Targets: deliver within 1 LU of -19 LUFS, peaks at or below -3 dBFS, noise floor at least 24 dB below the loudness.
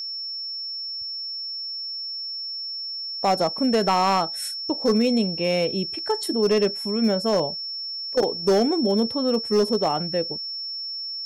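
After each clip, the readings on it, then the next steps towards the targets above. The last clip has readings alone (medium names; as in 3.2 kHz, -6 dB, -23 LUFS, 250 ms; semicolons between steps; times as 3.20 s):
clipped samples 0.6%; clipping level -13.5 dBFS; steady tone 5.4 kHz; tone level -29 dBFS; loudness -23.5 LUFS; peak level -13.5 dBFS; loudness target -19.0 LUFS
-> clip repair -13.5 dBFS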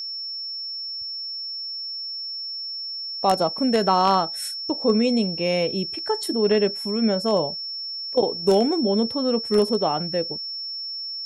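clipped samples 0.0%; steady tone 5.4 kHz; tone level -29 dBFS
-> band-stop 5.4 kHz, Q 30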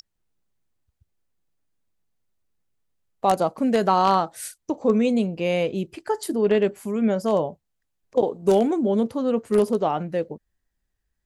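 steady tone not found; loudness -23.0 LUFS; peak level -5.0 dBFS; loudness target -19.0 LUFS
-> trim +4 dB; peak limiter -3 dBFS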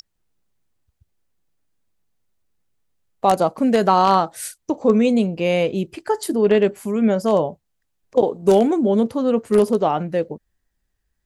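loudness -19.0 LUFS; peak level -3.0 dBFS; noise floor -74 dBFS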